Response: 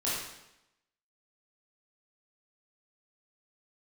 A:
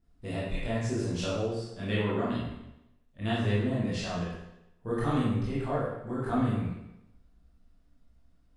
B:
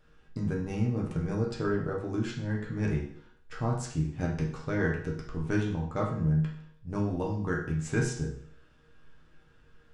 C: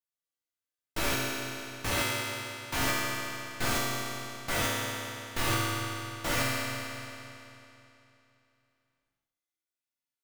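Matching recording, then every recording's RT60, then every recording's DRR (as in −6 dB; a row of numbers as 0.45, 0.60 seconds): A; 0.85, 0.60, 3.0 seconds; −9.0, −3.5, −7.0 decibels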